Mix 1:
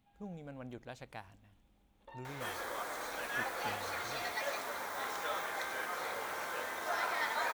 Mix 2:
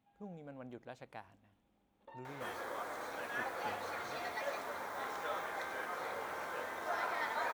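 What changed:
speech: add HPF 220 Hz 6 dB/oct; master: add high shelf 2200 Hz -9 dB

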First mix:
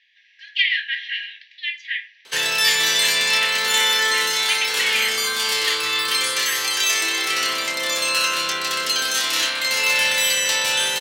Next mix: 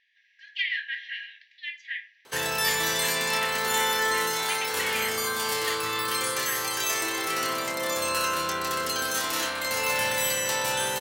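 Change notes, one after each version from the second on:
master: remove weighting filter D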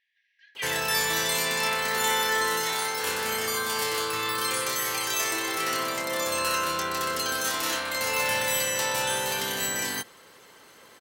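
speech -7.5 dB; background: entry -1.70 s

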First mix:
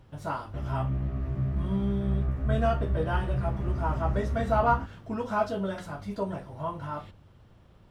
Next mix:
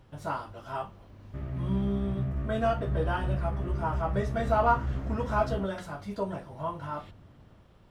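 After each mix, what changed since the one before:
background: entry +0.80 s; master: add bell 80 Hz -3 dB 2.8 oct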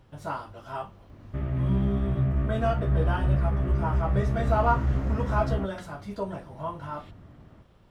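background +6.5 dB

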